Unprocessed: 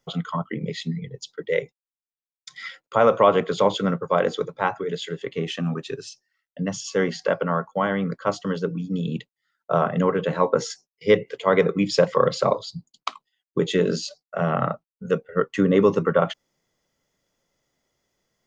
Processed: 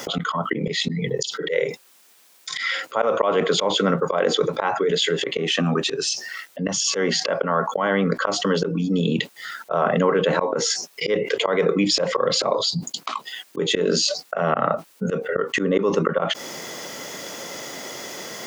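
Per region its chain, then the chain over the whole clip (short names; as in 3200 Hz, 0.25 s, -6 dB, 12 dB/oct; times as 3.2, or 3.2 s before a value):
1.14–3.09 HPF 63 Hz 6 dB/oct + doubler 50 ms -10.5 dB
whole clip: HPF 250 Hz 12 dB/oct; auto swell 0.247 s; fast leveller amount 70%; gain +1.5 dB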